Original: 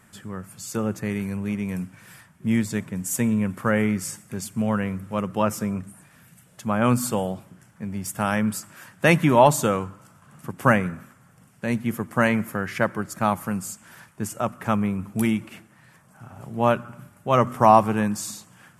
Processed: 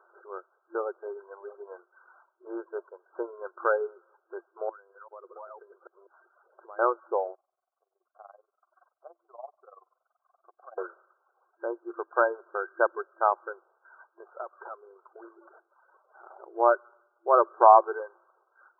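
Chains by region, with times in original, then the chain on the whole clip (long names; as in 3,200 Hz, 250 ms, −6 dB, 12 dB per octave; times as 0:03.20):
0:04.69–0:06.79: delay that plays each chunk backwards 197 ms, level −3.5 dB + downward compressor, threshold −38 dBFS
0:07.35–0:10.78: downward compressor 2.5 to 1, threshold −36 dBFS + amplitude modulation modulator 21 Hz, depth 70% + formant filter a
0:13.61–0:15.38: variable-slope delta modulation 16 kbit/s + downward compressor 8 to 1, threshold −30 dBFS + parametric band 220 Hz −15 dB 0.73 octaves
whole clip: reverb reduction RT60 1.1 s; brick-wall band-pass 340–1,600 Hz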